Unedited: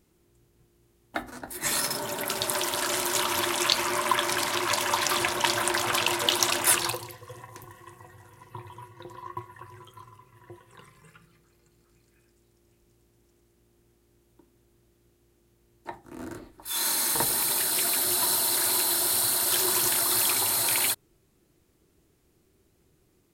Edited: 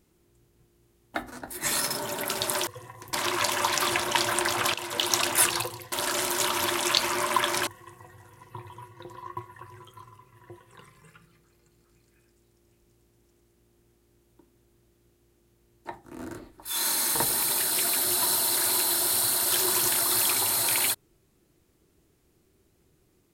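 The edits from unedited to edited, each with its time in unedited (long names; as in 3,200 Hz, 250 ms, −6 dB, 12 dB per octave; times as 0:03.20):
0:02.67–0:04.42: swap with 0:07.21–0:07.67
0:06.03–0:06.47: fade in, from −13 dB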